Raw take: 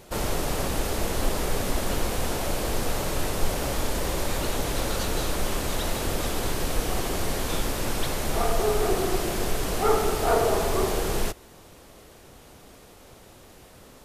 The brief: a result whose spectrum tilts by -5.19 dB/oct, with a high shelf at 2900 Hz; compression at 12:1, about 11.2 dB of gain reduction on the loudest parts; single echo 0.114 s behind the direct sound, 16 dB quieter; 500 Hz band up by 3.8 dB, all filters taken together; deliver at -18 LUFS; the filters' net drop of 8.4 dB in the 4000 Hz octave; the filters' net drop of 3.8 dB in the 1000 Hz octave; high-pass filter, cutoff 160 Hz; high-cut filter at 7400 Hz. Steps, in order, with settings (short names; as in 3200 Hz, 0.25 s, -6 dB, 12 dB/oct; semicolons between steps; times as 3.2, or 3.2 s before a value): HPF 160 Hz; LPF 7400 Hz; bell 500 Hz +7 dB; bell 1000 Hz -8 dB; high shelf 2900 Hz -7.5 dB; bell 4000 Hz -4 dB; compressor 12:1, threshold -26 dBFS; echo 0.114 s -16 dB; gain +13 dB